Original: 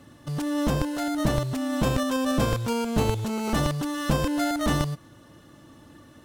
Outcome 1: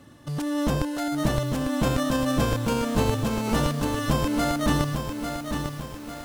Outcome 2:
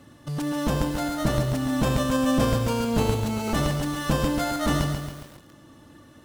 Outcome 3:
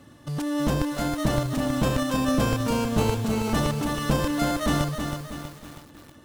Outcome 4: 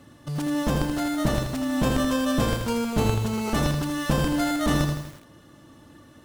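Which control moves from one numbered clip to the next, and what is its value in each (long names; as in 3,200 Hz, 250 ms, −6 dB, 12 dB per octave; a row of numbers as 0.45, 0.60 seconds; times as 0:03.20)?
feedback echo at a low word length, delay time: 849, 138, 321, 81 milliseconds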